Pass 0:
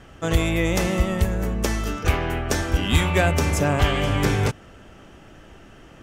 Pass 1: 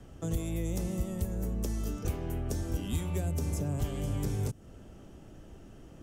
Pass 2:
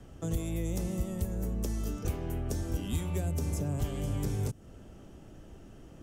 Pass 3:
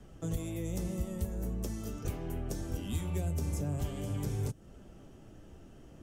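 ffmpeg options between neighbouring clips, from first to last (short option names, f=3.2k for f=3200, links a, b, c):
-filter_complex "[0:a]equalizer=f=1.9k:t=o:w=2.7:g=-13.5,acrossover=split=150|410|6000[a][b][c][d];[a]acompressor=threshold=-30dB:ratio=4[e];[b]acompressor=threshold=-37dB:ratio=4[f];[c]acompressor=threshold=-44dB:ratio=4[g];[d]acompressor=threshold=-43dB:ratio=4[h];[e][f][g][h]amix=inputs=4:normalize=0,volume=-2dB"
-af anull
-af "flanger=delay=4.6:depth=10:regen=-49:speed=0.42:shape=triangular,volume=1.5dB"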